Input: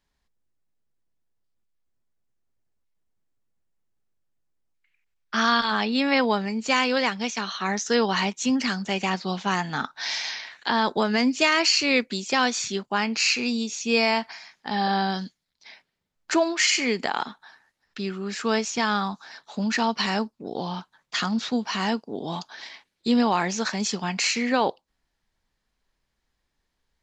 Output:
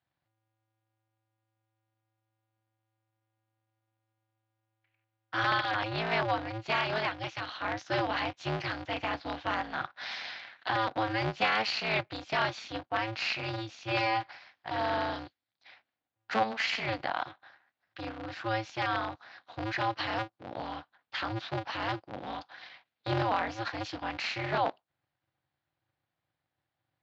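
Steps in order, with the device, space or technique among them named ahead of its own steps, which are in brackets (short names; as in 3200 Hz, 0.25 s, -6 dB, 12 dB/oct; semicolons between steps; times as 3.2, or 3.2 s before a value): ring modulator pedal into a guitar cabinet (polarity switched at an audio rate 110 Hz; speaker cabinet 110–4100 Hz, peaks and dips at 180 Hz -4 dB, 400 Hz -7 dB, 740 Hz +6 dB, 1500 Hz +3 dB); gain -8 dB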